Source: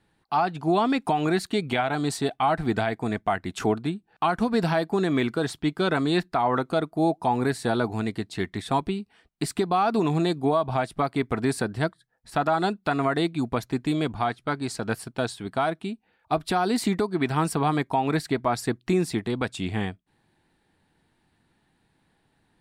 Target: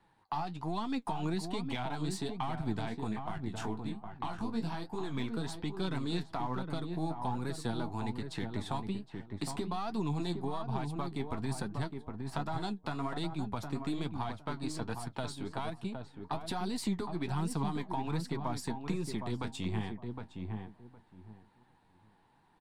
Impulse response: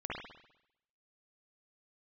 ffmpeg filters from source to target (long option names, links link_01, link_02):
-filter_complex "[0:a]aeval=exprs='if(lt(val(0),0),0.708*val(0),val(0))':channel_layout=same,acrossover=split=260|3000[link_01][link_02][link_03];[link_02]acompressor=threshold=-39dB:ratio=5[link_04];[link_01][link_04][link_03]amix=inputs=3:normalize=0,asplit=3[link_05][link_06][link_07];[link_05]afade=type=out:start_time=3.1:duration=0.02[link_08];[link_06]flanger=delay=18:depth=6:speed=2.4,afade=type=in:start_time=3.1:duration=0.02,afade=type=out:start_time=5.16:duration=0.02[link_09];[link_07]afade=type=in:start_time=5.16:duration=0.02[link_10];[link_08][link_09][link_10]amix=inputs=3:normalize=0,equalizer=frequency=940:width=2.1:gain=11.5,flanger=delay=4.9:depth=8.4:regen=47:speed=1.2:shape=triangular,highshelf=frequency=9600:gain=-6.5,asplit=2[link_11][link_12];[link_12]adelay=762,lowpass=frequency=1100:poles=1,volume=-6dB,asplit=2[link_13][link_14];[link_14]adelay=762,lowpass=frequency=1100:poles=1,volume=0.19,asplit=2[link_15][link_16];[link_16]adelay=762,lowpass=frequency=1100:poles=1,volume=0.19[link_17];[link_11][link_13][link_15][link_17]amix=inputs=4:normalize=0,acompressor=threshold=-39dB:ratio=1.5,volume=1.5dB"